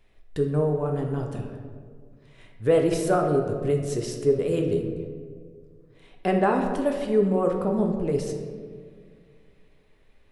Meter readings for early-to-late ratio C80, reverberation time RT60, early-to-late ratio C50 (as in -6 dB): 7.0 dB, 1.9 s, 5.0 dB